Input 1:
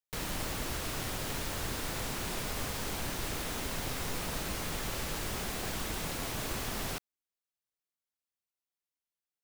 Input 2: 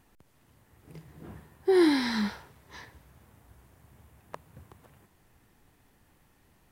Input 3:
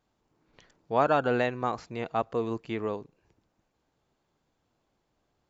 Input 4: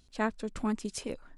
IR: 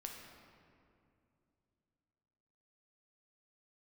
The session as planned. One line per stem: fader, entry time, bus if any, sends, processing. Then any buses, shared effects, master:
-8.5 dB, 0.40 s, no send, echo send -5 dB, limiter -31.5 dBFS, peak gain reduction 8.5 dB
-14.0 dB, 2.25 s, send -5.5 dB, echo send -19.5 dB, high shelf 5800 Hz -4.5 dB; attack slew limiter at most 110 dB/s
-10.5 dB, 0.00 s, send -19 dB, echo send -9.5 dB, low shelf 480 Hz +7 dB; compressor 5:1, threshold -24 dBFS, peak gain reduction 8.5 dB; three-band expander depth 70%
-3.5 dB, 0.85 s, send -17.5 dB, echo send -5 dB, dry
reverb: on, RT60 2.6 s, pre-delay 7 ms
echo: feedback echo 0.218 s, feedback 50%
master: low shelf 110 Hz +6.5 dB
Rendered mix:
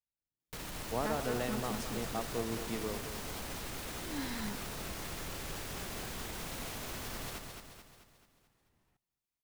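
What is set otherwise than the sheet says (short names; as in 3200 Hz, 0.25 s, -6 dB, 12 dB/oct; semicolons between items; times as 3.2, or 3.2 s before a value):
stem 1 -8.5 dB -> -2.0 dB; stem 4 -3.5 dB -> -9.5 dB; master: missing low shelf 110 Hz +6.5 dB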